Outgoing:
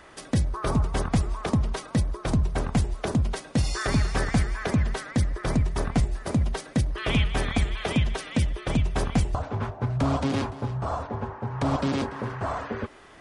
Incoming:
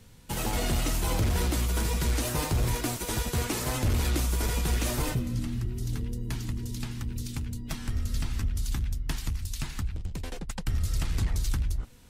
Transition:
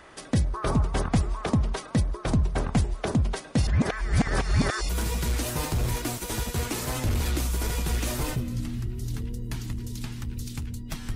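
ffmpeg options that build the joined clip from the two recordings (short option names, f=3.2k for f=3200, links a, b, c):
-filter_complex "[0:a]apad=whole_dur=11.15,atrim=end=11.15,asplit=2[a][b];[a]atrim=end=3.672[c];[b]atrim=start=3.668:end=4.892,asetpts=PTS-STARTPTS,areverse[d];[1:a]atrim=start=1.678:end=7.94[e];[c][d]acrossfade=d=0.004:c1=hsin:c2=hsin[f];[f][e]acrossfade=d=0.004:c1=hsin:c2=hsin"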